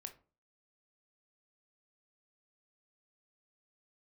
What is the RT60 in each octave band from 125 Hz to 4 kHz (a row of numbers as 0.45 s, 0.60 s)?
0.50 s, 0.45 s, 0.40 s, 0.35 s, 0.25 s, 0.20 s